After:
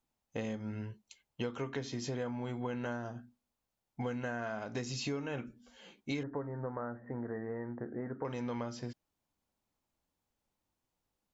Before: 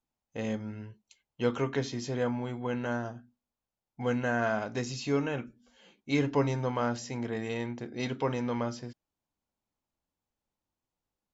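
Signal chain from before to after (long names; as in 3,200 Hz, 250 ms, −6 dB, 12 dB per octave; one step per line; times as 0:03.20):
downward compressor 10 to 1, threshold −37 dBFS, peak gain reduction 16.5 dB
0:06.23–0:08.25: Chebyshev low-pass with heavy ripple 1,900 Hz, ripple 3 dB
level +3 dB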